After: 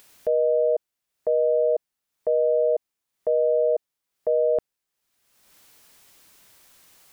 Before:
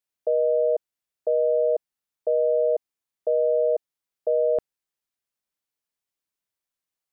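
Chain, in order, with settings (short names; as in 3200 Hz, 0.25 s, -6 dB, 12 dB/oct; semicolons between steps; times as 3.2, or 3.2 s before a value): upward compressor, threshold -37 dBFS; limiter -19 dBFS, peak gain reduction 4 dB; gain +4.5 dB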